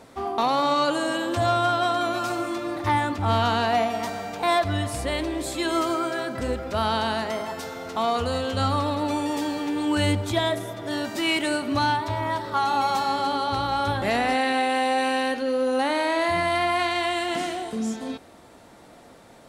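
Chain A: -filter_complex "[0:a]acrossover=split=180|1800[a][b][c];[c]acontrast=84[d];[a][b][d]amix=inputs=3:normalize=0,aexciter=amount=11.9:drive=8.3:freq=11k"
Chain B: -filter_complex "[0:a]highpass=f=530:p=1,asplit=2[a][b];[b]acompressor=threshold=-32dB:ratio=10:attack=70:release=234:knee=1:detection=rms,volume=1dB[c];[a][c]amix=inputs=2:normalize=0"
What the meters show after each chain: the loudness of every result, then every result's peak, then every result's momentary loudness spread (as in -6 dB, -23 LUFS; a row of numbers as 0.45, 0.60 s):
-21.0, -23.0 LUFS; -4.5, -8.5 dBFS; 7, 6 LU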